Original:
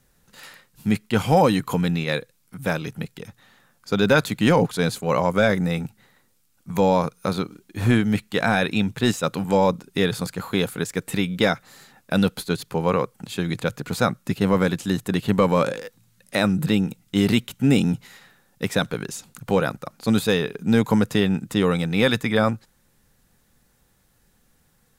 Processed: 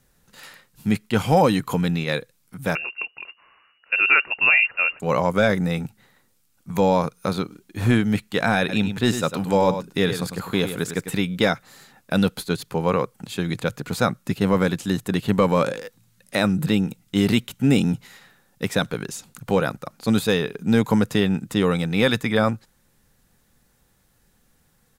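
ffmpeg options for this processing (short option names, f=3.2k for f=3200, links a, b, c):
-filter_complex "[0:a]asettb=1/sr,asplit=3[a][b][c];[a]atrim=end=2.754[d];[b]atrim=start=2.75:end=5,asetpts=PTS-STARTPTS,afade=t=in:d=0.004:c=qsin,afade=t=out:st=2.246:d=0.004:c=qsin,lowpass=f=2.5k:t=q:w=0.5098,lowpass=f=2.5k:t=q:w=0.6013,lowpass=f=2.5k:t=q:w=0.9,lowpass=f=2.5k:t=q:w=2.563,afreqshift=-2900[e];[c]atrim=start=4.996[f];[d][e]acrossfade=d=0.004:c1=hsin:c2=qsin[g];[g][f]acrossfade=d=0.004:c1=qsin:c2=hsin,asplit=3[h][i][j];[h]afade=t=out:st=8.68:d=0.02[k];[i]aecho=1:1:101:0.335,afade=t=in:st=8.68:d=0.02,afade=t=out:st=11.1:d=0.02[l];[j]afade=t=in:st=11.1:d=0.02[m];[k][l][m]amix=inputs=3:normalize=0"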